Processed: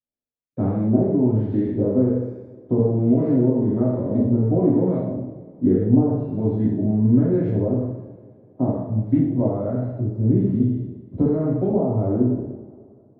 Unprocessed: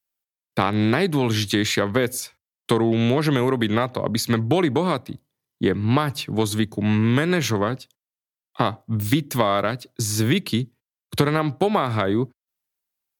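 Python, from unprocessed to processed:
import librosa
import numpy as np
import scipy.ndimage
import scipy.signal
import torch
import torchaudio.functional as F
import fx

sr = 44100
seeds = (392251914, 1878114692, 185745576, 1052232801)

y = fx.spec_trails(x, sr, decay_s=0.79)
y = fx.curve_eq(y, sr, hz=(270.0, 450.0, 640.0, 1200.0), db=(0, -3, -7, -28))
y = fx.filter_lfo_lowpass(y, sr, shape='saw_up', hz=1.2, low_hz=660.0, high_hz=1900.0, q=1.6)
y = fx.rev_double_slope(y, sr, seeds[0], early_s=0.75, late_s=2.9, knee_db=-20, drr_db=-6.5)
y = y * librosa.db_to_amplitude(-6.5)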